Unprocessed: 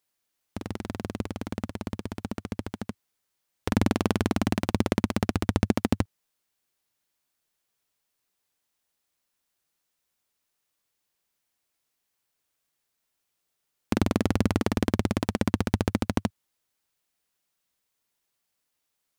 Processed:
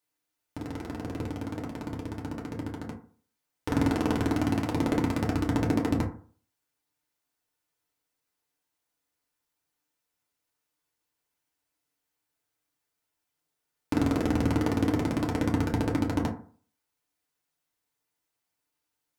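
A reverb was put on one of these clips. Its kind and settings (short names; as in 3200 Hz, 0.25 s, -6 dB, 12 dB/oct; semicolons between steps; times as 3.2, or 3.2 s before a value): FDN reverb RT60 0.45 s, low-frequency decay 1×, high-frequency decay 0.4×, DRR -3 dB; gain -6.5 dB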